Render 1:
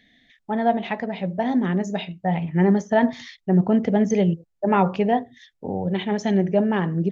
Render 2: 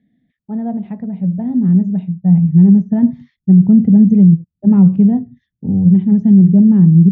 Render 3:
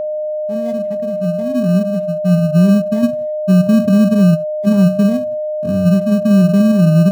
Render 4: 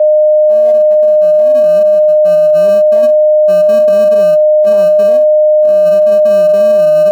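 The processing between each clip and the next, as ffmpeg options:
-af "bandpass=f=180:t=q:w=1.7:csg=0,asubboost=boost=8:cutoff=190,alimiter=level_in=7dB:limit=-1dB:release=50:level=0:latency=1,volume=-1dB"
-filter_complex "[0:a]asplit=2[a][b];[b]acrusher=samples=32:mix=1:aa=0.000001,volume=-8.5dB[c];[a][c]amix=inputs=2:normalize=0,aeval=exprs='val(0)+0.251*sin(2*PI*610*n/s)':c=same,volume=-5.5dB"
-af "highpass=f=590:t=q:w=4.9"

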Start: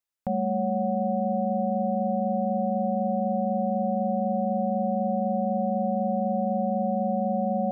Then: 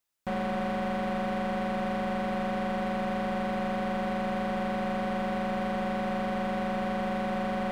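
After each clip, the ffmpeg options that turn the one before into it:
-filter_complex "[0:a]asplit=2[a][b];[b]alimiter=level_in=1.5dB:limit=-24dB:level=0:latency=1,volume=-1.5dB,volume=0dB[c];[a][c]amix=inputs=2:normalize=0,asoftclip=type=hard:threshold=-29dB"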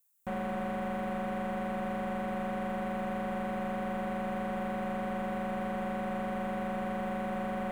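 -filter_complex "[0:a]aexciter=amount=5.6:drive=4:freq=6.8k,acrossover=split=3100[a][b];[b]acompressor=threshold=-55dB:ratio=4:attack=1:release=60[c];[a][c]amix=inputs=2:normalize=0,volume=-4dB"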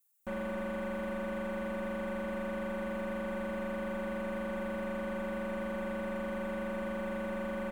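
-af "aecho=1:1:3.4:0.83,volume=-3.5dB"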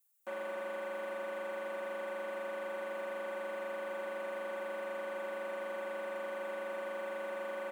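-af "highpass=f=360:w=0.5412,highpass=f=360:w=1.3066,volume=-1dB"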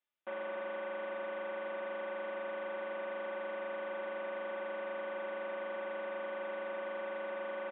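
-af "aresample=8000,aresample=44100"

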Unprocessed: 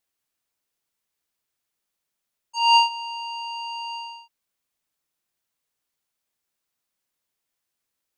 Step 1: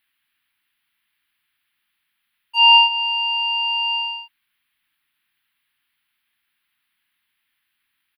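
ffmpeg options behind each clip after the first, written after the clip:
-filter_complex "[0:a]firequalizer=gain_entry='entry(310,0);entry(520,-20);entry(830,0);entry(1700,13);entry(3200,12);entry(4600,0);entry(6800,-27);entry(10000,2)':delay=0.05:min_phase=1,acrossover=split=1200|5900[a][b][c];[a]acompressor=threshold=-19dB:ratio=4[d];[b]acompressor=threshold=-15dB:ratio=4[e];[c]acompressor=threshold=-47dB:ratio=4[f];[d][e][f]amix=inputs=3:normalize=0,volume=3.5dB"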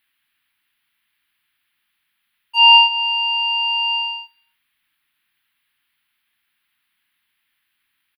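-af "aecho=1:1:97|194|291:0.0944|0.0359|0.0136,volume=2dB"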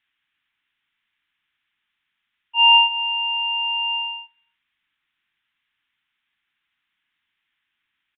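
-af "aresample=8000,aresample=44100,volume=-3.5dB"

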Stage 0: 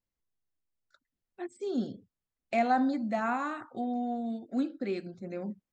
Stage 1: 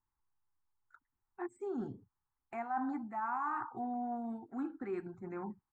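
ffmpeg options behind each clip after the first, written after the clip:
-af "firequalizer=gain_entry='entry(130,0);entry(190,-10);entry(380,-3);entry(570,-21);entry(840,10);entry(3400,-25);entry(5200,-26);entry(7500,-11)':delay=0.05:min_phase=1,areverse,acompressor=threshold=-37dB:ratio=6,areverse,volume=2.5dB"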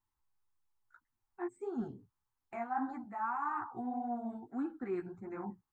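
-af "flanger=delay=8.5:depth=8.7:regen=-1:speed=1.7:shape=sinusoidal,volume=3dB"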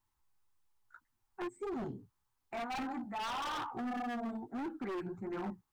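-af "aeval=exprs='(tanh(56.2*val(0)+0.1)-tanh(0.1))/56.2':c=same,aeval=exprs='0.0112*(abs(mod(val(0)/0.0112+3,4)-2)-1)':c=same,volume=5dB"

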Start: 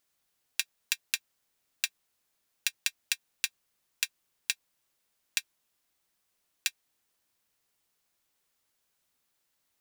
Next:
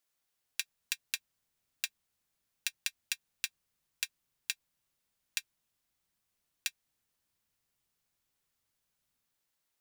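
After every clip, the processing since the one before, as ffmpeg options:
-filter_complex "[0:a]lowshelf=f=260:g=-5,acrossover=split=190|3300[a][b][c];[a]dynaudnorm=f=130:g=9:m=12.5dB[d];[d][b][c]amix=inputs=3:normalize=0,volume=-5dB"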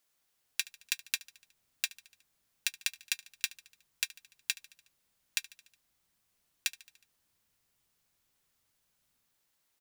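-filter_complex "[0:a]aecho=1:1:73|146|219|292|365:0.0794|0.0477|0.0286|0.0172|0.0103,asplit=2[a][b];[b]alimiter=limit=-20.5dB:level=0:latency=1:release=94,volume=-2dB[c];[a][c]amix=inputs=2:normalize=0"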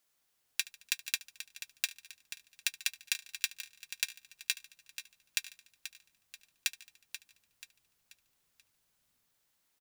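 -af "aecho=1:1:484|968|1452|1936:0.266|0.114|0.0492|0.0212"

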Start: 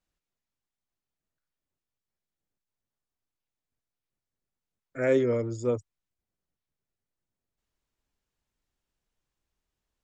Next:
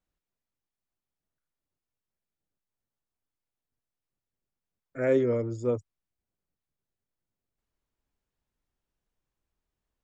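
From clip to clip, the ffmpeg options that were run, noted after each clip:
-af "highshelf=f=2.1k:g=-7"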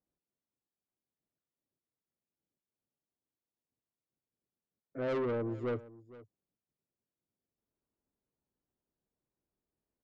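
-af "bandpass=f=310:t=q:w=0.69:csg=0,asoftclip=type=tanh:threshold=-31.5dB,aecho=1:1:464:0.119,volume=1dB"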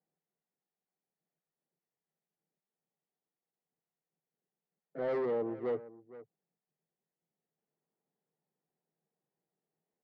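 -af "highpass=f=160:w=0.5412,highpass=f=160:w=1.3066,equalizer=f=160:t=q:w=4:g=10,equalizer=f=270:t=q:w=4:g=-6,equalizer=f=450:t=q:w=4:g=5,equalizer=f=770:t=q:w=4:g=8,equalizer=f=1.9k:t=q:w=4:g=8,lowpass=f=3.4k:w=0.5412,lowpass=f=3.4k:w=1.3066,asoftclip=type=tanh:threshold=-25dB,adynamicsmooth=sensitivity=6.5:basefreq=2k"

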